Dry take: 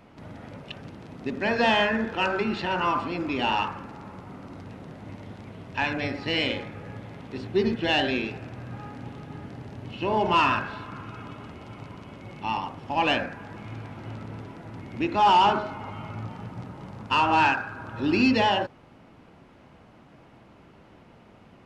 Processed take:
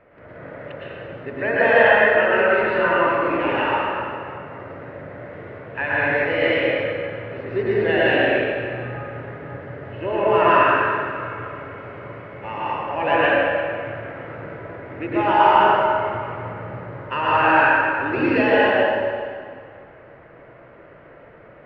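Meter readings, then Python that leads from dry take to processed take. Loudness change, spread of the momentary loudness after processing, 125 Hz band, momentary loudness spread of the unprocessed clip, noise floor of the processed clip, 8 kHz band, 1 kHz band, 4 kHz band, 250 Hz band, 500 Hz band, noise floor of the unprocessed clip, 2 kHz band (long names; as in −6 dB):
+6.0 dB, 21 LU, +2.5 dB, 21 LU, −45 dBFS, can't be measured, +5.5 dB, −2.0 dB, +2.5 dB, +11.0 dB, −53 dBFS, +10.0 dB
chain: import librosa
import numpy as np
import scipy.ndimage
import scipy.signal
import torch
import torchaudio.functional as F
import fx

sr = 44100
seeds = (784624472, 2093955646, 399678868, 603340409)

y = fx.curve_eq(x, sr, hz=(120.0, 210.0, 570.0, 820.0, 1800.0, 3700.0, 6800.0), db=(0, -7, 12, -1, 10, -11, -24))
y = fx.rev_plate(y, sr, seeds[0], rt60_s=2.1, hf_ratio=0.85, predelay_ms=95, drr_db=-8.0)
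y = y * 10.0 ** (-5.0 / 20.0)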